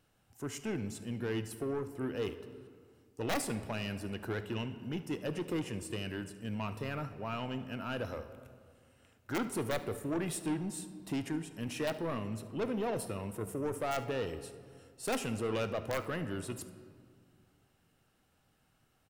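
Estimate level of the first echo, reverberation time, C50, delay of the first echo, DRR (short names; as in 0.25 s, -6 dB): -19.0 dB, 2.0 s, 11.0 dB, 73 ms, 9.5 dB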